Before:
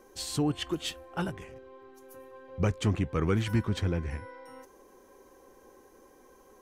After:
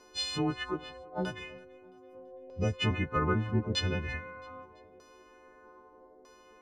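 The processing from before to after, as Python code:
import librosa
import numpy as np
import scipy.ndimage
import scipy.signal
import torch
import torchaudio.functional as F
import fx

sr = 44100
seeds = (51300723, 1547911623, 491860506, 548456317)

p1 = fx.freq_snap(x, sr, grid_st=3)
p2 = fx.spec_box(p1, sr, start_s=1.64, length_s=1.09, low_hz=830.0, high_hz=4200.0, gain_db=-11)
p3 = fx.filter_lfo_lowpass(p2, sr, shape='saw_down', hz=0.8, low_hz=550.0, high_hz=4500.0, q=1.9)
p4 = p3 + fx.echo_feedback(p3, sr, ms=334, feedback_pct=47, wet_db=-24, dry=0)
y = p4 * librosa.db_to_amplitude(-2.0)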